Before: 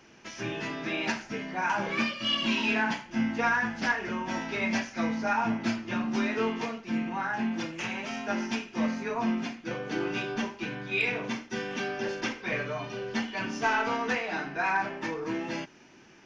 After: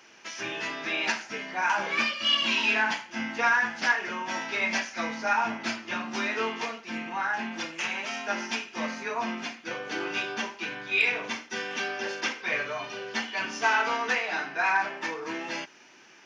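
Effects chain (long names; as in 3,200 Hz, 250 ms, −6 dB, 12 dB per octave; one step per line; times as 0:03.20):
high-pass filter 920 Hz 6 dB per octave
level +5 dB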